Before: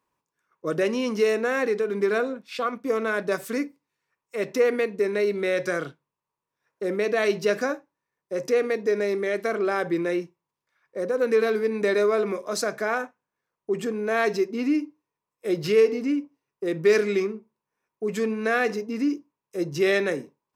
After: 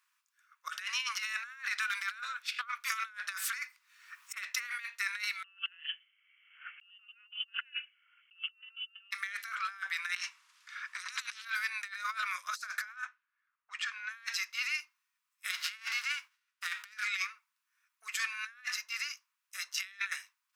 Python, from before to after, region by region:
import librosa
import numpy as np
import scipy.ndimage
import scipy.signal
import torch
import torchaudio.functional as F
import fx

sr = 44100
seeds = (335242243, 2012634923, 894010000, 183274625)

y = fx.chain(x, sr, fx.highpass(hz=370.0, slope=12),
    fx.high_shelf(hz=6600.0, db=-3.5),
    fx.band_squash(depth_pct=100), at=(0.69, 4.47))
y = fx.chain(y, sr, fx.freq_invert(carrier_hz=3200),
    fx.band_squash(depth_pct=70), at=(5.44, 9.11))
y = fx.chain(y, sr, fx.lowpass(hz=7600.0, slope=12),
    fx.spectral_comp(ratio=10.0), at=(10.16, 11.45))
y = fx.chain(y, sr, fx.highpass(hz=690.0, slope=12),
    fx.env_lowpass(base_hz=1700.0, full_db=-25.5), at=(12.96, 14.43))
y = fx.envelope_flatten(y, sr, power=0.6, at=(15.5, 16.91), fade=0.02)
y = fx.lowpass(y, sr, hz=2600.0, slope=6, at=(15.5, 16.91), fade=0.02)
y = scipy.signal.sosfilt(scipy.signal.ellip(4, 1.0, 70, 1300.0, 'highpass', fs=sr, output='sos'), y)
y = fx.over_compress(y, sr, threshold_db=-39.0, ratio=-0.5)